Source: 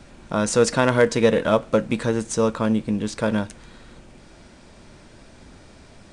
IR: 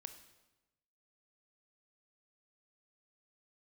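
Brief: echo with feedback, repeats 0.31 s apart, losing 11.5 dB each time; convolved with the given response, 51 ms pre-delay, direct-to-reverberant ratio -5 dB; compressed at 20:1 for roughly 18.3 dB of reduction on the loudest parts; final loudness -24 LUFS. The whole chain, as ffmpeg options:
-filter_complex "[0:a]acompressor=threshold=-30dB:ratio=20,aecho=1:1:310|620|930:0.266|0.0718|0.0194,asplit=2[a][b];[1:a]atrim=start_sample=2205,adelay=51[c];[b][c]afir=irnorm=-1:irlink=0,volume=10dB[d];[a][d]amix=inputs=2:normalize=0,volume=5.5dB"

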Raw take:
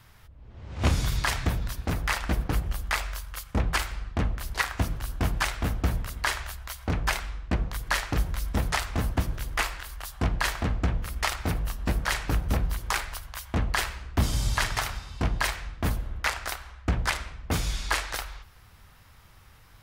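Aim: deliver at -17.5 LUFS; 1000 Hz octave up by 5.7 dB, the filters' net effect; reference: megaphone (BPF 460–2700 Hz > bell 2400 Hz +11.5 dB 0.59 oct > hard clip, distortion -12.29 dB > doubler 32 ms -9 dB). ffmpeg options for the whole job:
-filter_complex "[0:a]highpass=460,lowpass=2.7k,equalizer=f=1k:t=o:g=6.5,equalizer=f=2.4k:t=o:w=0.59:g=11.5,asoftclip=type=hard:threshold=-15.5dB,asplit=2[a][b];[b]adelay=32,volume=-9dB[c];[a][c]amix=inputs=2:normalize=0,volume=11dB"

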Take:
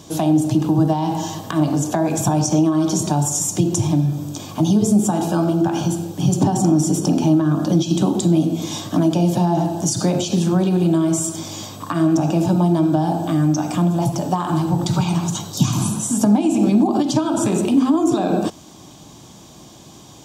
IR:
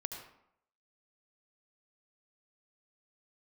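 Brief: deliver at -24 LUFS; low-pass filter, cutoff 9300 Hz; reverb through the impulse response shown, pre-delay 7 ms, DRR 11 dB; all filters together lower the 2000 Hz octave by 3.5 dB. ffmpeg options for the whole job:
-filter_complex "[0:a]lowpass=9.3k,equalizer=f=2k:t=o:g=-5,asplit=2[a][b];[1:a]atrim=start_sample=2205,adelay=7[c];[b][c]afir=irnorm=-1:irlink=0,volume=-10.5dB[d];[a][d]amix=inputs=2:normalize=0,volume=-6dB"

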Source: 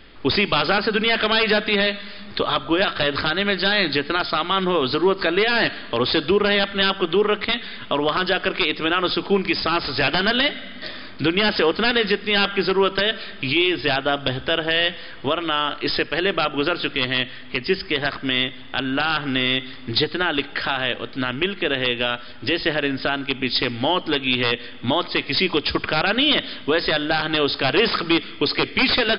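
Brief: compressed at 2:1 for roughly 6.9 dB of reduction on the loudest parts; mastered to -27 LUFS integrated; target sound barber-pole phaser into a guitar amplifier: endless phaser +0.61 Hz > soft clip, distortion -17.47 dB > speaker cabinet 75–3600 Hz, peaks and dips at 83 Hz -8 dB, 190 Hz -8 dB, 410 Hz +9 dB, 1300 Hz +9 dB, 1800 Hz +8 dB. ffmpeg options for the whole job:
-filter_complex "[0:a]acompressor=threshold=-27dB:ratio=2,asplit=2[a][b];[b]afreqshift=0.61[c];[a][c]amix=inputs=2:normalize=1,asoftclip=threshold=-20.5dB,highpass=75,equalizer=f=83:t=q:w=4:g=-8,equalizer=f=190:t=q:w=4:g=-8,equalizer=f=410:t=q:w=4:g=9,equalizer=f=1.3k:t=q:w=4:g=9,equalizer=f=1.8k:t=q:w=4:g=8,lowpass=f=3.6k:w=0.5412,lowpass=f=3.6k:w=1.3066"

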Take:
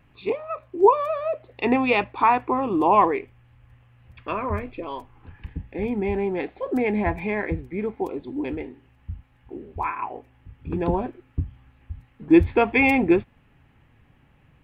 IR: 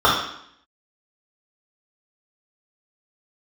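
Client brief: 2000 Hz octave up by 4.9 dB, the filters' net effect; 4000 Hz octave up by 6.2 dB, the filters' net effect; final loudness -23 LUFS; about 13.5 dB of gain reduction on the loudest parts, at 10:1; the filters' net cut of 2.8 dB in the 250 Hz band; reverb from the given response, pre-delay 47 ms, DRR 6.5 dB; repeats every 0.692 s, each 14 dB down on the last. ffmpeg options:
-filter_complex "[0:a]equalizer=f=250:t=o:g=-4,equalizer=f=2k:t=o:g=3.5,equalizer=f=4k:t=o:g=7,acompressor=threshold=-25dB:ratio=10,aecho=1:1:692|1384:0.2|0.0399,asplit=2[a][b];[1:a]atrim=start_sample=2205,adelay=47[c];[b][c]afir=irnorm=-1:irlink=0,volume=-31.5dB[d];[a][d]amix=inputs=2:normalize=0,volume=8dB"

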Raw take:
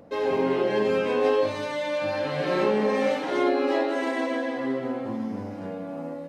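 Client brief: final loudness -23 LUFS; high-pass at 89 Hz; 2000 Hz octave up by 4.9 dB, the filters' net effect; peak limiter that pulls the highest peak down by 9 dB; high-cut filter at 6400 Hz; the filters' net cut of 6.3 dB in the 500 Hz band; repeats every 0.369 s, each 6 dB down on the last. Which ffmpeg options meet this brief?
-af "highpass=89,lowpass=6.4k,equalizer=f=500:t=o:g=-8,equalizer=f=2k:t=o:g=6.5,alimiter=limit=-23dB:level=0:latency=1,aecho=1:1:369|738|1107|1476|1845|2214:0.501|0.251|0.125|0.0626|0.0313|0.0157,volume=7.5dB"

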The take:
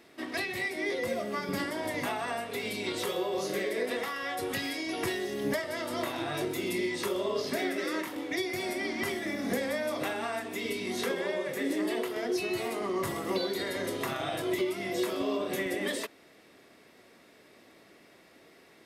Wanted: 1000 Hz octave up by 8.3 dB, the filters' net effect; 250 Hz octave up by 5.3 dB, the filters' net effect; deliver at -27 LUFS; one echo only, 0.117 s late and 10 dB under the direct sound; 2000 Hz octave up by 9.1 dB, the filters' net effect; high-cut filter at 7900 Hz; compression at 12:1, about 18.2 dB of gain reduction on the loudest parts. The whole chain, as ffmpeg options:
-af "lowpass=7.9k,equalizer=f=250:t=o:g=6.5,equalizer=f=1k:t=o:g=8.5,equalizer=f=2k:t=o:g=8,acompressor=threshold=-40dB:ratio=12,aecho=1:1:117:0.316,volume=15.5dB"

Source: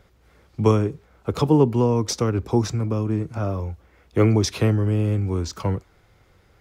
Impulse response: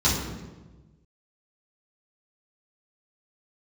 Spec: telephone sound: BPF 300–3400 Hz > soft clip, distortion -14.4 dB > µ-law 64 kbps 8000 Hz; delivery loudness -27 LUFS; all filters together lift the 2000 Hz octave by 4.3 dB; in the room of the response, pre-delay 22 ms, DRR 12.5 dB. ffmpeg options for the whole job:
-filter_complex "[0:a]equalizer=f=2k:t=o:g=6,asplit=2[a][b];[1:a]atrim=start_sample=2205,adelay=22[c];[b][c]afir=irnorm=-1:irlink=0,volume=-27.5dB[d];[a][d]amix=inputs=2:normalize=0,highpass=300,lowpass=3.4k,asoftclip=threshold=-14.5dB,volume=0.5dB" -ar 8000 -c:a pcm_mulaw

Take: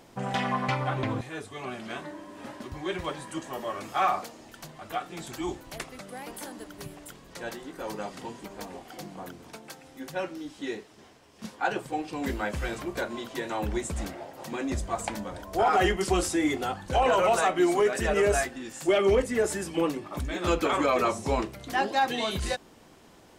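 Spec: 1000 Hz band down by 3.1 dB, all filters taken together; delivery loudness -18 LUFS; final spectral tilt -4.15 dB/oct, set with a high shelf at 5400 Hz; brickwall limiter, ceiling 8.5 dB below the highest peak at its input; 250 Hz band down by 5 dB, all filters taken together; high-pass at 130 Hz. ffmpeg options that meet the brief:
-af "highpass=130,equalizer=f=250:t=o:g=-7,equalizer=f=1k:t=o:g=-3.5,highshelf=f=5.4k:g=-8,volume=17.5dB,alimiter=limit=-6dB:level=0:latency=1"

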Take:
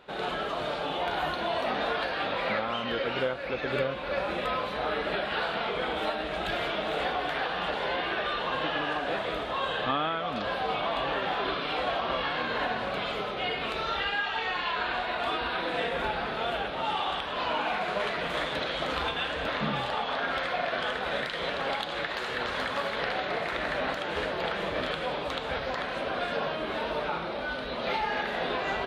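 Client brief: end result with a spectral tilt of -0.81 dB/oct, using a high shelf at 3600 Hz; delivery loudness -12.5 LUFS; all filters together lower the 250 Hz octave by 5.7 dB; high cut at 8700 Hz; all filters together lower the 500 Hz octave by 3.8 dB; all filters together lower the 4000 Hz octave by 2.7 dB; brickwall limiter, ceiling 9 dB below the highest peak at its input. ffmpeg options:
-af "lowpass=8.7k,equalizer=f=250:t=o:g=-6.5,equalizer=f=500:t=o:g=-3.5,highshelf=f=3.6k:g=5,equalizer=f=4k:t=o:g=-6.5,volume=21.5dB,alimiter=limit=-4dB:level=0:latency=1"

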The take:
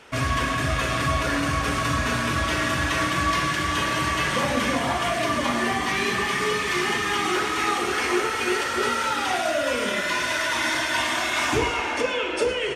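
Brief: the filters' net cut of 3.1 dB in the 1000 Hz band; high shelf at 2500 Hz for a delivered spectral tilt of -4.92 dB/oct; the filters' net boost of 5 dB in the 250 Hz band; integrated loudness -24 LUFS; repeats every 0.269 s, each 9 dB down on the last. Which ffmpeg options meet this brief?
-af "equalizer=f=250:t=o:g=6.5,equalizer=f=1k:t=o:g=-3,highshelf=f=2.5k:g=-6,aecho=1:1:269|538|807|1076:0.355|0.124|0.0435|0.0152,volume=-0.5dB"

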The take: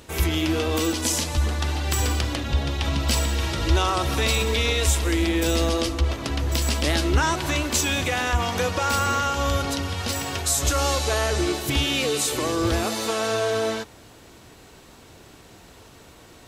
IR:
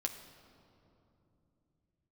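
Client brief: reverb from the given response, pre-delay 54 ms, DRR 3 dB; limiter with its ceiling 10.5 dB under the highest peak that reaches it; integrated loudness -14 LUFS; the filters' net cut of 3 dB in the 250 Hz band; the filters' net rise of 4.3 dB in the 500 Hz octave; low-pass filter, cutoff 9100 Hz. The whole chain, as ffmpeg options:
-filter_complex "[0:a]lowpass=9.1k,equalizer=f=250:t=o:g=-8.5,equalizer=f=500:t=o:g=7.5,alimiter=limit=-18dB:level=0:latency=1,asplit=2[a][b];[1:a]atrim=start_sample=2205,adelay=54[c];[b][c]afir=irnorm=-1:irlink=0,volume=-3.5dB[d];[a][d]amix=inputs=2:normalize=0,volume=11dB"

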